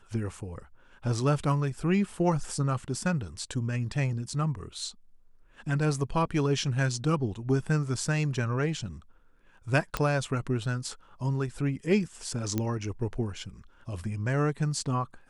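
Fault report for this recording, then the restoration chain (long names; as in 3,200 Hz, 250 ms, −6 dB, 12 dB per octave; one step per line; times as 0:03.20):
0:09.97: click −13 dBFS
0:12.58: click −15 dBFS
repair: click removal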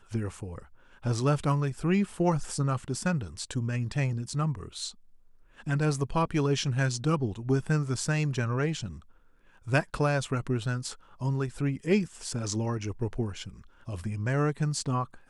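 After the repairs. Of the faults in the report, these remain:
none of them is left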